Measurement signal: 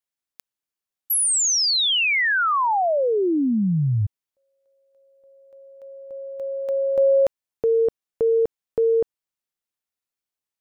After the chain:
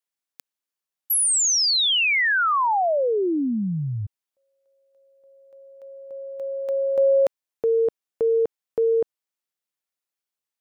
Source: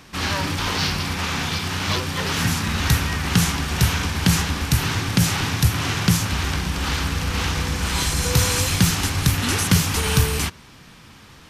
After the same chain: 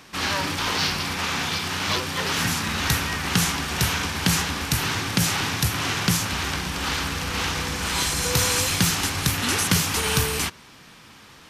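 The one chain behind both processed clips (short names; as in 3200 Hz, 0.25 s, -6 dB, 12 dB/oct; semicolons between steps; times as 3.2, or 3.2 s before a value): low shelf 160 Hz -10.5 dB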